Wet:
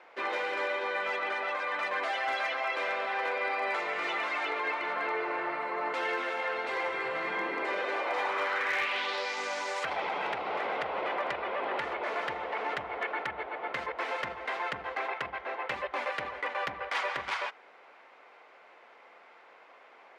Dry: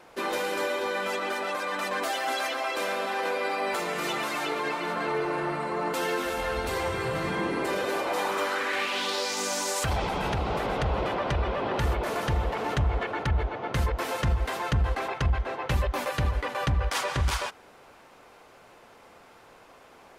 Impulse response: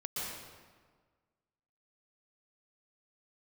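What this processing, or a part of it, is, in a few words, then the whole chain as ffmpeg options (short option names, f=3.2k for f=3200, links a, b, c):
megaphone: -af "highpass=490,lowpass=3.1k,equalizer=f=2.1k:t=o:w=0.39:g=6,asoftclip=type=hard:threshold=-21dB,volume=-2dB"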